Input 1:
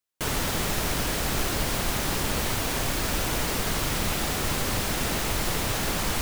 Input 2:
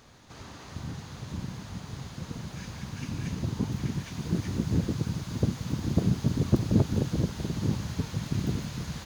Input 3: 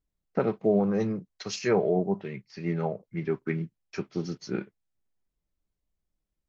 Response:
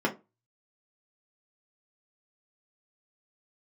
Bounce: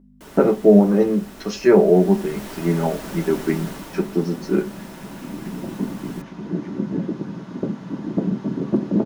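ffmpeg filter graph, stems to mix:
-filter_complex "[0:a]volume=-11.5dB,afade=t=in:st=1.87:d=0.63:silence=0.398107,afade=t=out:st=3.61:d=0.44:silence=0.446684,asplit=2[a][b];[b]volume=-10.5dB[c];[1:a]highpass=f=200:p=1,aemphasis=mode=reproduction:type=75fm,adelay=2200,volume=-5.5dB,asplit=2[d][e];[e]volume=-4.5dB[f];[2:a]aeval=exprs='val(0)+0.00251*(sin(2*PI*50*n/s)+sin(2*PI*2*50*n/s)/2+sin(2*PI*3*50*n/s)/3+sin(2*PI*4*50*n/s)/4+sin(2*PI*5*50*n/s)/5)':c=same,volume=-1dB,asplit=2[g][h];[h]volume=-5dB[i];[3:a]atrim=start_sample=2205[j];[c][f][i]amix=inputs=3:normalize=0[k];[k][j]afir=irnorm=-1:irlink=0[l];[a][d][g][l]amix=inputs=4:normalize=0"

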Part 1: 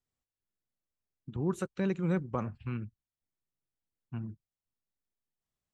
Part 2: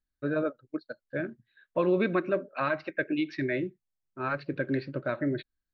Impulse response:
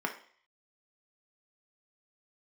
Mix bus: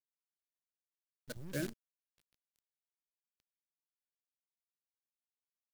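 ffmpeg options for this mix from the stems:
-filter_complex "[0:a]lowpass=2.3k,asoftclip=type=hard:threshold=-30.5dB,volume=-7dB,asplit=3[a][b][c];[a]atrim=end=1.68,asetpts=PTS-STARTPTS,afade=t=out:st=1.676:d=0.004:c=hsin[d];[b]atrim=start=1.68:end=4.66,asetpts=PTS-STARTPTS,volume=0[e];[c]atrim=start=4.66,asetpts=PTS-STARTPTS,afade=t=in:d=0.004:c=hsin[f];[d][e][f]concat=n=3:v=0:a=1,asplit=2[g][h];[1:a]adelay=400,volume=0dB[i];[h]apad=whole_len=270569[j];[i][j]sidechaingate=range=-43dB:threshold=-52dB:ratio=16:detection=peak[k];[g][k]amix=inputs=2:normalize=0,acrusher=bits=7:dc=4:mix=0:aa=0.000001,equalizer=f=920:t=o:w=2.6:g=-11.5"

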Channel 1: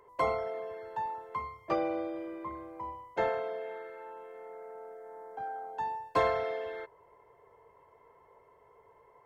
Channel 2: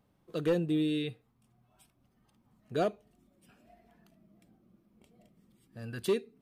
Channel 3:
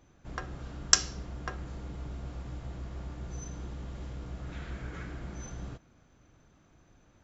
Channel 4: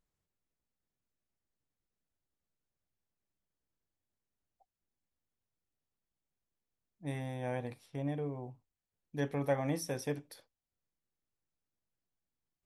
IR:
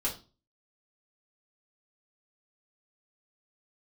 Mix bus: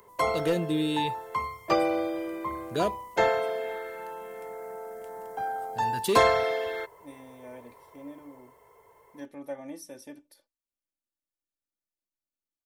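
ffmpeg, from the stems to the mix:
-filter_complex "[0:a]dynaudnorm=f=110:g=21:m=4dB,highshelf=f=6.5k:g=9.5,volume=2dB[a];[1:a]volume=1.5dB[b];[3:a]equalizer=f=400:w=0.47:g=6,aecho=1:1:3.4:0.77,volume=-14.5dB[c];[a][b][c]amix=inputs=3:normalize=0,highshelf=f=3.6k:g=10"

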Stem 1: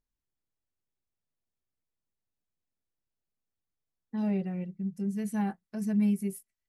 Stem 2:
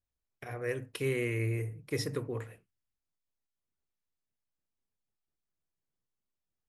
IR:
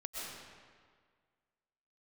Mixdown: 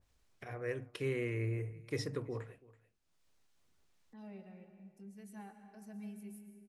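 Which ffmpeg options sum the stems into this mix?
-filter_complex "[0:a]highpass=f=420:p=1,volume=-17.5dB,asplit=2[a][b];[b]volume=-3.5dB[c];[1:a]lowpass=8k,volume=-4dB,asplit=2[d][e];[e]volume=-22dB[f];[2:a]atrim=start_sample=2205[g];[c][g]afir=irnorm=-1:irlink=0[h];[f]aecho=0:1:330:1[i];[a][d][h][i]amix=inputs=4:normalize=0,acompressor=mode=upward:threshold=-55dB:ratio=2.5,adynamicequalizer=threshold=0.00178:dfrequency=2000:dqfactor=0.7:tfrequency=2000:tqfactor=0.7:attack=5:release=100:ratio=0.375:range=3.5:mode=cutabove:tftype=highshelf"

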